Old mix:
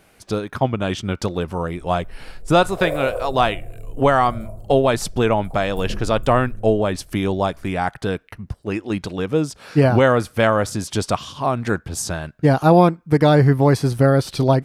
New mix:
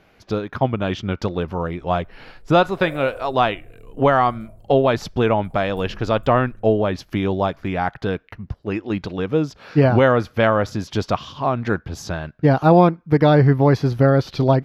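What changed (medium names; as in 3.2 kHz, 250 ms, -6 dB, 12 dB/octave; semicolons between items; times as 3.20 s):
speech: add boxcar filter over 5 samples; background -10.5 dB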